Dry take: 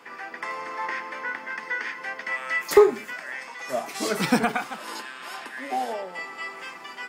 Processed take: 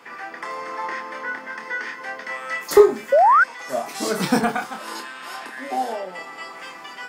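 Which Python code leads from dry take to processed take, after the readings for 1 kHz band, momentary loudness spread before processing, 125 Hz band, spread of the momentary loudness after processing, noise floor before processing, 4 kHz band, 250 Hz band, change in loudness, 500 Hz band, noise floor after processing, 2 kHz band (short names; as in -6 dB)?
+8.5 dB, 15 LU, +2.5 dB, 19 LU, -42 dBFS, +1.5 dB, +3.0 dB, +5.5 dB, +4.0 dB, -40 dBFS, +3.0 dB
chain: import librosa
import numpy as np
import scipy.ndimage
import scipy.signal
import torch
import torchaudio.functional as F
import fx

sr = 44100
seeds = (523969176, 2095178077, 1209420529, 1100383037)

y = fx.doubler(x, sr, ms=27.0, db=-6.0)
y = fx.dynamic_eq(y, sr, hz=2400.0, q=1.8, threshold_db=-41.0, ratio=4.0, max_db=-6)
y = fx.spec_paint(y, sr, seeds[0], shape='rise', start_s=3.12, length_s=0.32, low_hz=520.0, high_hz=1600.0, level_db=-15.0)
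y = y * 10.0 ** (2.0 / 20.0)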